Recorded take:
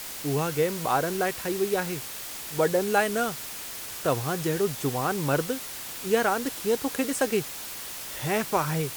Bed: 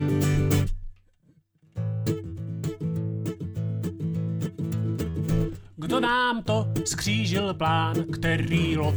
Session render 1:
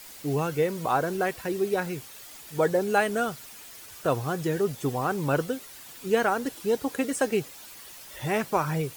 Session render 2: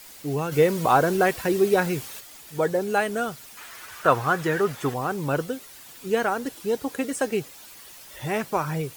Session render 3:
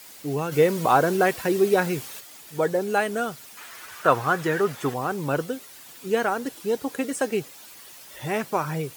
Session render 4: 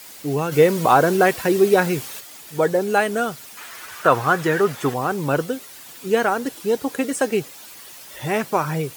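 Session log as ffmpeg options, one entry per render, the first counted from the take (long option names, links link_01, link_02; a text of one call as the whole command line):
ffmpeg -i in.wav -af "afftdn=noise_reduction=10:noise_floor=-38" out.wav
ffmpeg -i in.wav -filter_complex "[0:a]asplit=3[link_01][link_02][link_03];[link_01]afade=type=out:start_time=0.51:duration=0.02[link_04];[link_02]acontrast=69,afade=type=in:start_time=0.51:duration=0.02,afade=type=out:start_time=2.19:duration=0.02[link_05];[link_03]afade=type=in:start_time=2.19:duration=0.02[link_06];[link_04][link_05][link_06]amix=inputs=3:normalize=0,asettb=1/sr,asplit=3[link_07][link_08][link_09];[link_07]atrim=end=3.574[link_10];[link_08]atrim=start=3.57:end=4.94,asetpts=PTS-STARTPTS,afade=type=in:duration=0.004:curve=qsin,afade=type=out:start_time=1.366:duration=0.004:curve=qsin,equalizer=frequency=1400:width=0.72:gain=13[link_11];[link_09]atrim=start=4.936[link_12];[link_10][link_11]acrossfade=duration=0.004:curve1=hsin:curve2=qsin[link_13];[link_13][link_12]acrossfade=duration=0.004:curve1=qsin:curve2=hsin" out.wav
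ffmpeg -i in.wav -af "highpass=frequency=180:poles=1,lowshelf=frequency=260:gain=3.5" out.wav
ffmpeg -i in.wav -af "volume=4.5dB,alimiter=limit=-2dB:level=0:latency=1" out.wav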